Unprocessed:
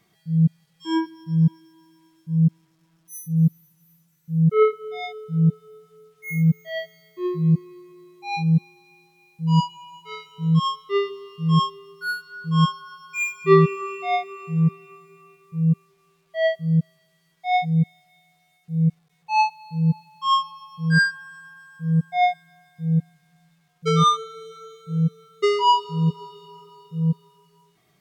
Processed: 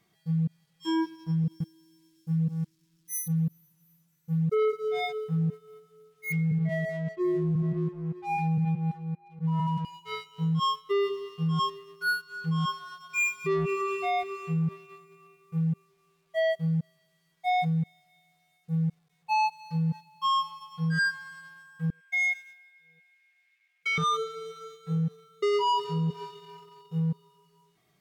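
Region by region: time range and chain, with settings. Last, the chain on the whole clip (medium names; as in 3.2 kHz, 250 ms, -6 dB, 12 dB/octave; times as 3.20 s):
1.44–3.28 s: FFT filter 330 Hz 0 dB, 580 Hz -18 dB, 4.7 kHz +5 dB + delay 162 ms -14.5 dB
6.32–9.85 s: low-pass 2 kHz 24 dB/octave + reverse bouncing-ball echo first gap 70 ms, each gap 1.5×, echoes 5
21.90–23.98 s: resonant high-pass 2.2 kHz, resonance Q 7.6 + tape noise reduction on one side only decoder only
whole clip: dynamic bell 440 Hz, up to +4 dB, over -40 dBFS, Q 2.9; waveshaping leveller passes 1; peak limiter -18.5 dBFS; trim -3.5 dB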